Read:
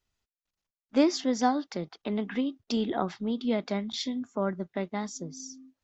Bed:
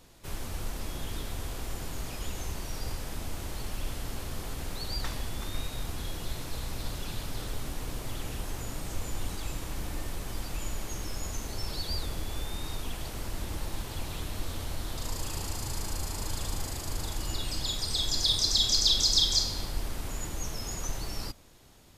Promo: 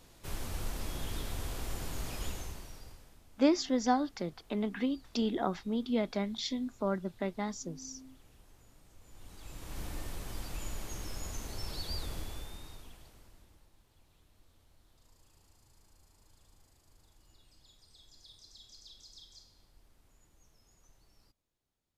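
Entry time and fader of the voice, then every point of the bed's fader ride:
2.45 s, −3.0 dB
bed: 0:02.27 −2 dB
0:03.23 −24.5 dB
0:08.98 −24.5 dB
0:09.80 −5 dB
0:12.19 −5 dB
0:13.73 −30.5 dB

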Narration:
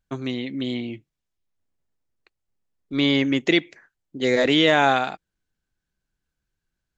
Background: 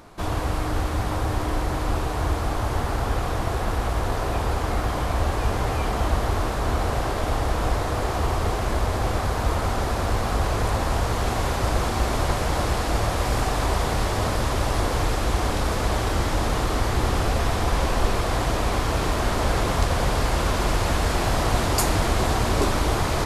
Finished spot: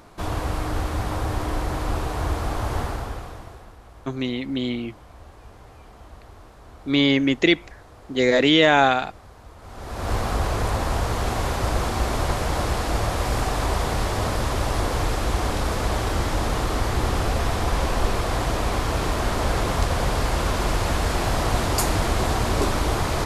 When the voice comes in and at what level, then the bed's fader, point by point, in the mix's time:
3.95 s, +1.5 dB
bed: 0:02.82 −1 dB
0:03.77 −22 dB
0:09.56 −22 dB
0:10.12 −0.5 dB

